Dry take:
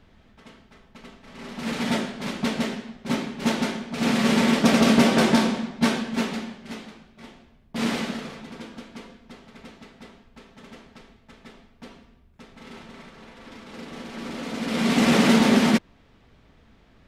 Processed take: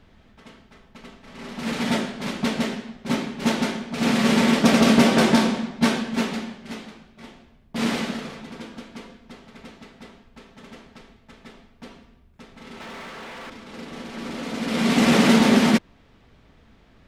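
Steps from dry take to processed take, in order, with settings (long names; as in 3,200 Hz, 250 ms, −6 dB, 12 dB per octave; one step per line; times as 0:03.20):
0:12.80–0:13.50: mid-hump overdrive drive 29 dB, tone 2,600 Hz, clips at −32 dBFS
level +1.5 dB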